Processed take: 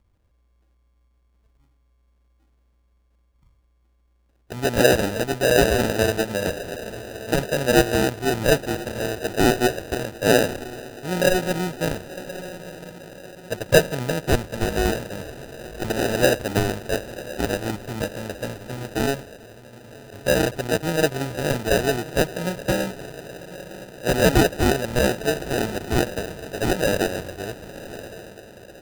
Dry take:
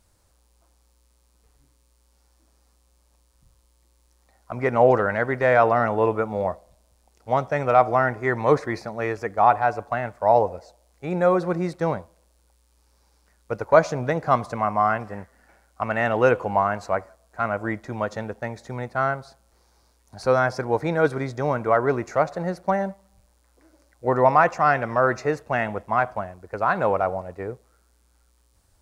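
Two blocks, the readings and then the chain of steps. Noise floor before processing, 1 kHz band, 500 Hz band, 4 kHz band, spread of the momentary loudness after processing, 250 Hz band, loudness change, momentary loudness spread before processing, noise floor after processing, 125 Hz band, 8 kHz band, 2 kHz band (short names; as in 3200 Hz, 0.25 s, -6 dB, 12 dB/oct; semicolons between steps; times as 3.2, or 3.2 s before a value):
-63 dBFS, -7.5 dB, 0.0 dB, +17.0 dB, 18 LU, +5.0 dB, 0.0 dB, 14 LU, -63 dBFS, +3.5 dB, n/a, +1.5 dB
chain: diffused feedback echo 1.093 s, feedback 53%, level -14 dB; low-pass opened by the level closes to 430 Hz, open at -19 dBFS; sample-and-hold 40×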